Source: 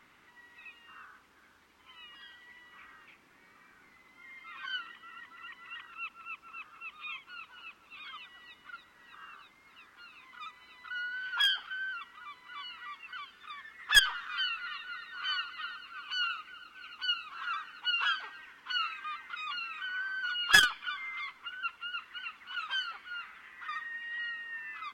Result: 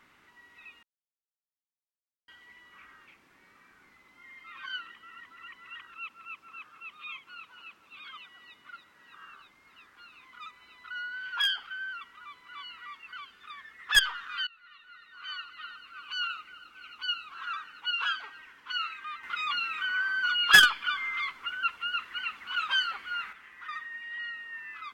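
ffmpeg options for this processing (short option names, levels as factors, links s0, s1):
-filter_complex "[0:a]asettb=1/sr,asplit=3[s0][s1][s2];[s0]atrim=end=5.964[s3];[s1]atrim=start=5.96:end=9.27,asetpts=PTS-STARTPTS,afade=t=in:d=0.004:c=qsin,afade=t=out:st=3.306:d=0.004:c=qsin,highpass=86[s4];[s2]atrim=start=9.266[s5];[s3][s4]acrossfade=d=0.004:c1=hsin:c2=qsin[s6];[s6][s5]acrossfade=d=0.004:c1=qsin:c2=hsin,asettb=1/sr,asplit=3[s7][s8][s9];[s7]atrim=end=19.234[s10];[s8]atrim=start=19.23:end=23.33,asetpts=PTS-STARTPTS,afade=t=in:d=0.004:c=qsin,afade=t=out:st=4.096:d=0.004:c=qsin,aeval=exprs='0.501*sin(PI/2*1.41*val(0)/0.501)':c=same[s11];[s9]atrim=start=23.326[s12];[s10][s11]acrossfade=d=0.004:c1=hsin:c2=qsin[s13];[s13][s12]acrossfade=d=0.004:c1=qsin:c2=hsin,asplit=4[s14][s15][s16][s17];[s14]atrim=end=0.83,asetpts=PTS-STARTPTS,afade=t=out:st=0.826:d=0.004:c=hsin[s18];[s15]atrim=start=0.83:end=2.28,asetpts=PTS-STARTPTS,volume=0[s19];[s16]atrim=start=2.28:end=14.47,asetpts=PTS-STARTPTS,afade=t=in:d=0.004:c=hsin,afade=t=out:st=12.186:d=0.004:c=hsin:silence=0.0707946[s20];[s17]atrim=start=14.47,asetpts=PTS-STARTPTS,afade=t=in:d=1.72:silence=0.0707946[s21];[s18][s19][s20][s21]concat=n=4:v=0:a=1"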